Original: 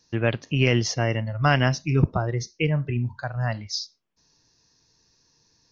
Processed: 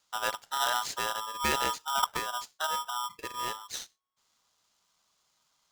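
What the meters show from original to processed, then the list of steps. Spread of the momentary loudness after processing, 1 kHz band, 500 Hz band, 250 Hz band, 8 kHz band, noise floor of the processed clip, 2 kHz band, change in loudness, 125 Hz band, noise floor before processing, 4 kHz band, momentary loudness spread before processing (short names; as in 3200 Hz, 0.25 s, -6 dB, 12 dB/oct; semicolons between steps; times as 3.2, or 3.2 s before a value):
9 LU, +1.0 dB, -12.5 dB, -20.5 dB, n/a, -74 dBFS, -6.5 dB, -7.0 dB, -31.0 dB, -65 dBFS, -1.5 dB, 9 LU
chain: polarity switched at an audio rate 1100 Hz; gain -9 dB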